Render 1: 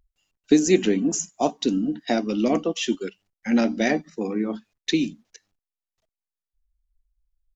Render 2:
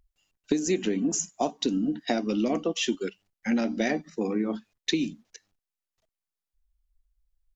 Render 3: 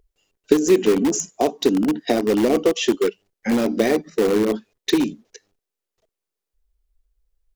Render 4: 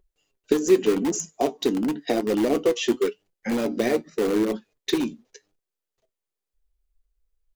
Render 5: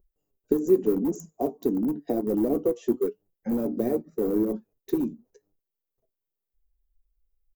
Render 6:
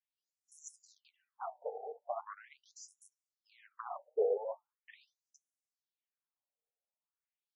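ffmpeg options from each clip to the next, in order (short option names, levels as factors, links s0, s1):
-af "acompressor=threshold=0.0794:ratio=6"
-filter_complex "[0:a]equalizer=f=430:w=1.7:g=13,asplit=2[s0][s1];[s1]aeval=exprs='(mod(6.68*val(0)+1,2)-1)/6.68':c=same,volume=0.299[s2];[s0][s2]amix=inputs=2:normalize=0,volume=1.19"
-af "flanger=delay=5.3:depth=3.6:regen=62:speed=0.88:shape=triangular,bandreject=f=5400:w=28"
-af "firequalizer=gain_entry='entry(170,0);entry(2000,-22);entry(3100,-26);entry(15000,4)':delay=0.05:min_phase=1"
-af "asoftclip=type=tanh:threshold=0.0794,afftfilt=real='re*between(b*sr/1024,580*pow(7700/580,0.5+0.5*sin(2*PI*0.41*pts/sr))/1.41,580*pow(7700/580,0.5+0.5*sin(2*PI*0.41*pts/sr))*1.41)':imag='im*between(b*sr/1024,580*pow(7700/580,0.5+0.5*sin(2*PI*0.41*pts/sr))/1.41,580*pow(7700/580,0.5+0.5*sin(2*PI*0.41*pts/sr))*1.41)':win_size=1024:overlap=0.75,volume=1.26"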